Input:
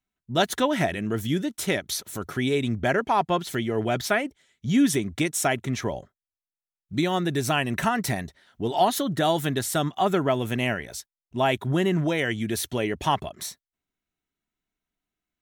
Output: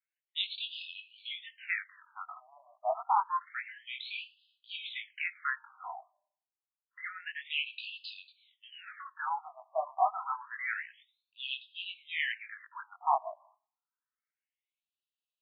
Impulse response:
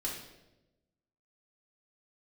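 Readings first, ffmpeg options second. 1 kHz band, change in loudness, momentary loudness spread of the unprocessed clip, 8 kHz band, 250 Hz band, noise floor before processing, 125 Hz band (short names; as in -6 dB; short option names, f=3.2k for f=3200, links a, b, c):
-7.0 dB, -11.0 dB, 10 LU, under -40 dB, under -40 dB, under -85 dBFS, under -40 dB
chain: -filter_complex "[0:a]flanger=delay=18:depth=4.8:speed=0.64,asplit=2[a][b];[b]aderivative[c];[1:a]atrim=start_sample=2205,asetrate=74970,aresample=44100,adelay=37[d];[c][d]afir=irnorm=-1:irlink=0,volume=-5.5dB[e];[a][e]amix=inputs=2:normalize=0,afftfilt=real='re*between(b*sr/1024,840*pow(3600/840,0.5+0.5*sin(2*PI*0.28*pts/sr))/1.41,840*pow(3600/840,0.5+0.5*sin(2*PI*0.28*pts/sr))*1.41)':imag='im*between(b*sr/1024,840*pow(3600/840,0.5+0.5*sin(2*PI*0.28*pts/sr))/1.41,840*pow(3600/840,0.5+0.5*sin(2*PI*0.28*pts/sr))*1.41)':win_size=1024:overlap=0.75"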